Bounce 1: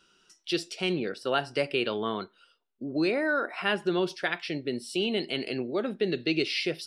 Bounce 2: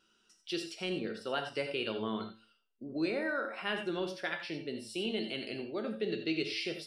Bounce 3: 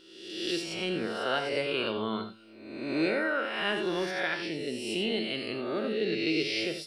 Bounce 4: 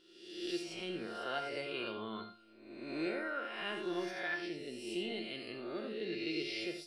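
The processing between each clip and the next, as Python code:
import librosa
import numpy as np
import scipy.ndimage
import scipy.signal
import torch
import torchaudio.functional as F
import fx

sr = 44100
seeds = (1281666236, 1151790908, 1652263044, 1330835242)

y1 = fx.comb_fb(x, sr, f0_hz=110.0, decay_s=0.42, harmonics='all', damping=0.0, mix_pct=70)
y1 = fx.wow_flutter(y1, sr, seeds[0], rate_hz=2.1, depth_cents=21.0)
y1 = fx.rev_gated(y1, sr, seeds[1], gate_ms=110, shape='rising', drr_db=7.5)
y2 = fx.spec_swells(y1, sr, rise_s=1.06)
y2 = y2 * librosa.db_to_amplitude(2.5)
y3 = fx.comb_fb(y2, sr, f0_hz=350.0, decay_s=0.4, harmonics='all', damping=0.0, mix_pct=80)
y3 = y3 * librosa.db_to_amplitude(2.0)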